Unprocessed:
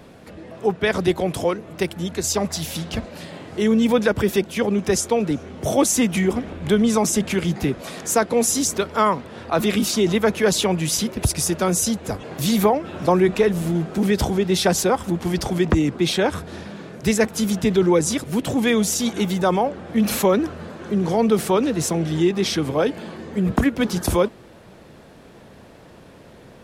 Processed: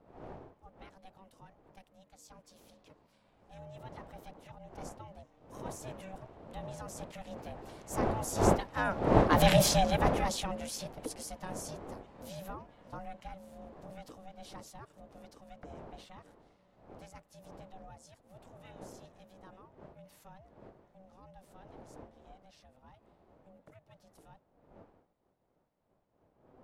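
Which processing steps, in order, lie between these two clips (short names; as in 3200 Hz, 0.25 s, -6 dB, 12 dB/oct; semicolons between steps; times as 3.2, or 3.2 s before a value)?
wind noise 380 Hz -21 dBFS; Doppler pass-by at 9.53, 8 m/s, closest 1.6 m; ring modulator 380 Hz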